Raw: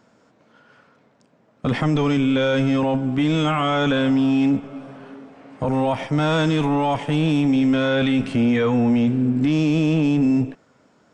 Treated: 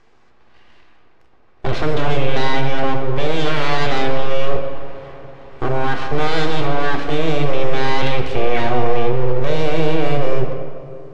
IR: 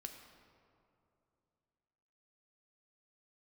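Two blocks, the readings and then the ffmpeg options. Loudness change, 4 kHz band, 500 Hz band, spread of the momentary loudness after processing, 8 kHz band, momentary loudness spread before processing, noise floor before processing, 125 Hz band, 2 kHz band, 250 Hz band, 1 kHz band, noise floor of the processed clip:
−1.0 dB, +3.0 dB, +4.0 dB, 11 LU, can't be measured, 5 LU, −59 dBFS, −0.5 dB, +3.5 dB, −8.5 dB, +4.5 dB, −48 dBFS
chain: -filter_complex "[0:a]aeval=exprs='abs(val(0))':channel_layout=same,lowpass=5100[link_01];[1:a]atrim=start_sample=2205[link_02];[link_01][link_02]afir=irnorm=-1:irlink=0,volume=8.5dB"

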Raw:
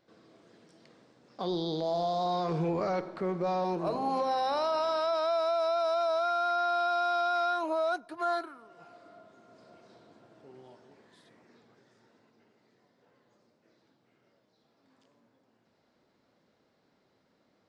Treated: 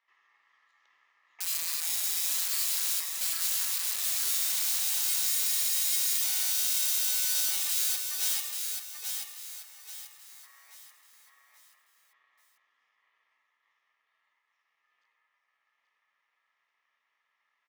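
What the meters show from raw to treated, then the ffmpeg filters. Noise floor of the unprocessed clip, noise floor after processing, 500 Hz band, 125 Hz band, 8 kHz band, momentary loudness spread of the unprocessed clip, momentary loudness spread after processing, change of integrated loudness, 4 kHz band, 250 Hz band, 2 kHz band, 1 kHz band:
−72 dBFS, −79 dBFS, below −25 dB, below −30 dB, can't be measured, 5 LU, 11 LU, +3.5 dB, +9.5 dB, below −30 dB, −1.0 dB, −21.5 dB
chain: -filter_complex "[0:a]aeval=exprs='val(0)*sin(2*PI*1500*n/s)':channel_layout=same,highpass=190,lowpass=2300,aeval=exprs='(mod(42.2*val(0)+1,2)-1)/42.2':channel_layout=same,aderivative,asplit=2[link_01][link_02];[link_02]aecho=0:1:834|1668|2502|3336|4170:0.562|0.208|0.077|0.0285|0.0105[link_03];[link_01][link_03]amix=inputs=2:normalize=0,volume=8.5dB"

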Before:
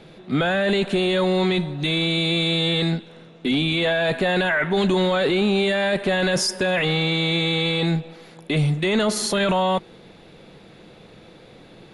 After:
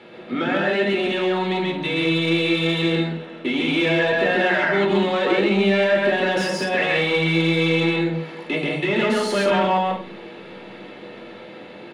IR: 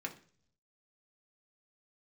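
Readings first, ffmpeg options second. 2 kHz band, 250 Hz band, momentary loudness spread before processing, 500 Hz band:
+2.5 dB, +1.0 dB, 4 LU, +2.0 dB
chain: -filter_complex "[0:a]asplit=2[link_01][link_02];[link_02]acompressor=threshold=-28dB:ratio=6,volume=2dB[link_03];[link_01][link_03]amix=inputs=2:normalize=0,aecho=1:1:134.1|183.7:0.891|0.447,dynaudnorm=framelen=860:gausssize=5:maxgain=11.5dB,asoftclip=type=tanh:threshold=-4.5dB,asplit=2[link_04][link_05];[link_05]highpass=frequency=720:poles=1,volume=11dB,asoftclip=type=tanh:threshold=-5dB[link_06];[link_04][link_06]amix=inputs=2:normalize=0,lowpass=frequency=1700:poles=1,volume=-6dB[link_07];[1:a]atrim=start_sample=2205,asetrate=52920,aresample=44100[link_08];[link_07][link_08]afir=irnorm=-1:irlink=0,volume=-3.5dB"

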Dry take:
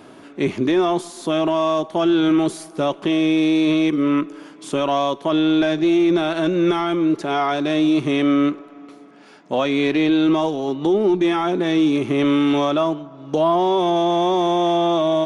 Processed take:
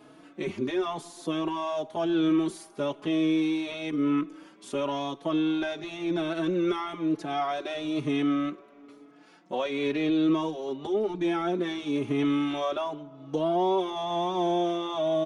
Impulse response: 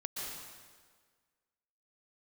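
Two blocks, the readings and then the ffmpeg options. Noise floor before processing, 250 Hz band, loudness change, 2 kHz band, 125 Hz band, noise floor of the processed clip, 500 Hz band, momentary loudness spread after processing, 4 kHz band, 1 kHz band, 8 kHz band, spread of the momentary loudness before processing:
−44 dBFS, −9.5 dB, −9.5 dB, −9.5 dB, −9.5 dB, −54 dBFS, −9.5 dB, 8 LU, −9.5 dB, −9.5 dB, can't be measured, 7 LU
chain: -filter_complex "[0:a]asplit=2[link_01][link_02];[link_02]adelay=4.3,afreqshift=0.99[link_03];[link_01][link_03]amix=inputs=2:normalize=1,volume=-6.5dB"

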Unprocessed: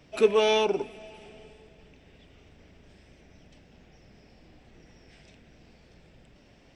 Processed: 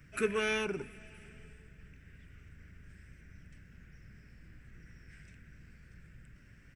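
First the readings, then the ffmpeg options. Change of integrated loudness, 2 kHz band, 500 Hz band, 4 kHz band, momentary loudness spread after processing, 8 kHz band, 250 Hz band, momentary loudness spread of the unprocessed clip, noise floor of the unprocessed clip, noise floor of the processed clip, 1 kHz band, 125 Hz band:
−9.5 dB, −1.0 dB, −11.5 dB, −10.5 dB, 22 LU, −4.0 dB, −4.5 dB, 13 LU, −58 dBFS, −59 dBFS, −12.0 dB, +1.0 dB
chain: -af "firequalizer=gain_entry='entry(130,0);entry(250,-10);entry(770,-24);entry(1500,3);entry(3500,-18);entry(9300,1)':delay=0.05:min_phase=1,volume=3.5dB"

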